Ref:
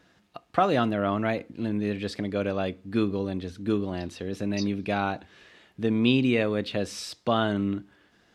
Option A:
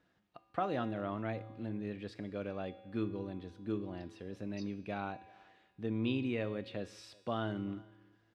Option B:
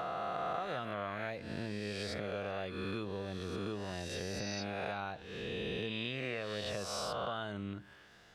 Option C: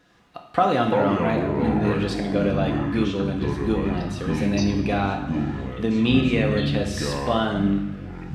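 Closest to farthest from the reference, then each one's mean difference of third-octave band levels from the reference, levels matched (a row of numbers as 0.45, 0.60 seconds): A, C, B; 2.5, 7.0, 10.0 decibels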